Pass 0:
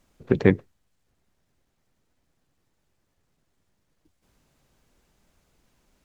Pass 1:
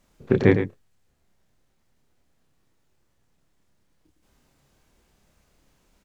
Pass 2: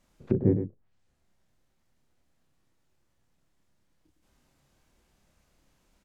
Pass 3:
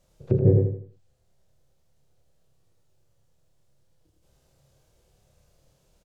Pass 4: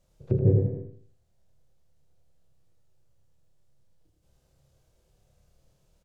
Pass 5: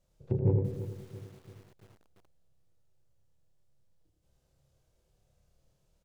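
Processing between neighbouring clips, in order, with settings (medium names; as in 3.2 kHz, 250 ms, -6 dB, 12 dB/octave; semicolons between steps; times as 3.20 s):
doubling 29 ms -3 dB; on a send: delay 109 ms -9 dB
low-pass that closes with the level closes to 380 Hz, closed at -22 dBFS; band-stop 430 Hz, Q 12; trim -4 dB
ten-band graphic EQ 125 Hz +8 dB, 250 Hz -12 dB, 500 Hz +8 dB, 1 kHz -5 dB, 2 kHz -7 dB; on a send: feedback delay 80 ms, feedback 36%, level -7.5 dB; on the sum: trim +3 dB
bass shelf 180 Hz +4 dB; on a send at -9.5 dB: reverberation, pre-delay 164 ms; on the sum: trim -5 dB
tracing distortion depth 0.13 ms; bit-crushed delay 341 ms, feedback 55%, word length 7-bit, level -13.5 dB; trim -5.5 dB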